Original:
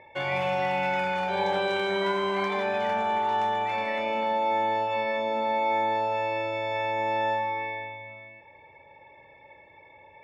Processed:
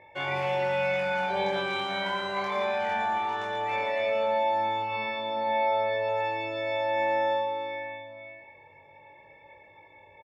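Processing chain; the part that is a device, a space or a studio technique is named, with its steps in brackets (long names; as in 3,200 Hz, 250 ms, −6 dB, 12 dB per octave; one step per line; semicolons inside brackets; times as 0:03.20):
double-tracked vocal (double-tracking delay 29 ms −10 dB; chorus effect 0.2 Hz, delay 19 ms, depth 2.9 ms)
0:04.82–0:06.09: Butterworth low-pass 5,900 Hz 36 dB per octave
single-tap delay 115 ms −8.5 dB
level +1 dB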